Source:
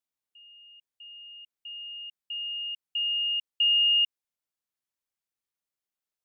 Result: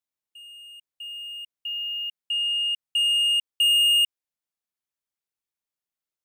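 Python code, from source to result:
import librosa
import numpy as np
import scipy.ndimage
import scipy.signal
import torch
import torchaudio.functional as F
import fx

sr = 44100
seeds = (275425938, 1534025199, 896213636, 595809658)

y = fx.leveller(x, sr, passes=2)
y = F.gain(torch.from_numpy(y), 2.0).numpy()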